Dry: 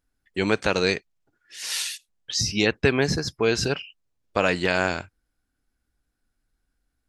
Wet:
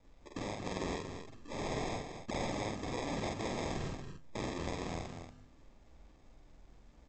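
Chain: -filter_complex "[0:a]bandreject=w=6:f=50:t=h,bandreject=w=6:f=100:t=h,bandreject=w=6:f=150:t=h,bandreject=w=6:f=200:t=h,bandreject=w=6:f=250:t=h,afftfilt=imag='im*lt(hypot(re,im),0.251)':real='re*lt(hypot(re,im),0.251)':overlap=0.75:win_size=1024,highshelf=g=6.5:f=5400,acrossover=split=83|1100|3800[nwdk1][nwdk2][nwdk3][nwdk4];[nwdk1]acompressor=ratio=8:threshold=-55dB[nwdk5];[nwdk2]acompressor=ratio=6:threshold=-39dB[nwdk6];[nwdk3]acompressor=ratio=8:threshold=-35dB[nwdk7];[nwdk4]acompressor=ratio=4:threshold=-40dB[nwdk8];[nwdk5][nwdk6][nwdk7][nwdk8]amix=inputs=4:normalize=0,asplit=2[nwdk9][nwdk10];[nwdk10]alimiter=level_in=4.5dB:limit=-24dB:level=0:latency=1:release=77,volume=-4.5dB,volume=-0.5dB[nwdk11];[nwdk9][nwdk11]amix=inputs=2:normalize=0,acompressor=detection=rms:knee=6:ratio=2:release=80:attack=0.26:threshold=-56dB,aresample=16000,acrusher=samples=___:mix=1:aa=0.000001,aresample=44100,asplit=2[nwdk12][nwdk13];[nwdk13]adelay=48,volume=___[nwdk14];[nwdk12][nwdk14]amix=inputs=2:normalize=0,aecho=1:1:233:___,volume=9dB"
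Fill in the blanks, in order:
11, -2dB, 0.398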